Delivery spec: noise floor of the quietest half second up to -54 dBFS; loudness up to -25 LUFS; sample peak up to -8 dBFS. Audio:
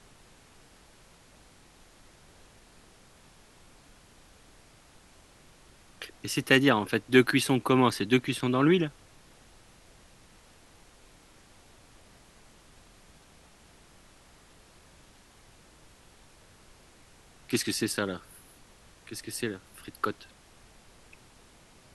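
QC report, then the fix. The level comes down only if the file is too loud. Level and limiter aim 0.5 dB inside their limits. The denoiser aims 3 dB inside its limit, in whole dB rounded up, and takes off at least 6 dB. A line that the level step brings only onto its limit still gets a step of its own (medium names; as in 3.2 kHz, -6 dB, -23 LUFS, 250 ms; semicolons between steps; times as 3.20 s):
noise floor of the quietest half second -57 dBFS: pass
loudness -26.5 LUFS: pass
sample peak -6.0 dBFS: fail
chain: peak limiter -8.5 dBFS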